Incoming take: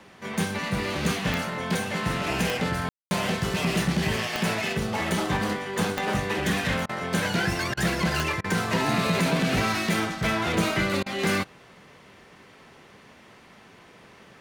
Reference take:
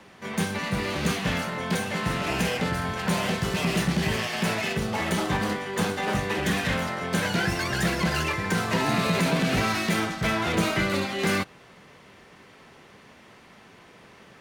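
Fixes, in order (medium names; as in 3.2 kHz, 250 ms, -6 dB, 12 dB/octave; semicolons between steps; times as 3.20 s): de-click; room tone fill 2.89–3.11 s; interpolate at 6.86/7.74/8.41/11.03 s, 31 ms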